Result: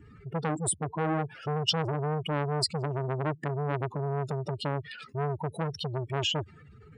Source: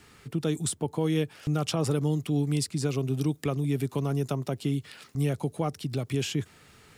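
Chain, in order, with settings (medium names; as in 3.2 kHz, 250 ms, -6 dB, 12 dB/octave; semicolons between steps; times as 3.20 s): spectral contrast enhancement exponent 2.8; dynamic bell 4.4 kHz, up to +6 dB, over -54 dBFS, Q 1.1; transformer saturation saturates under 1.3 kHz; trim +3.5 dB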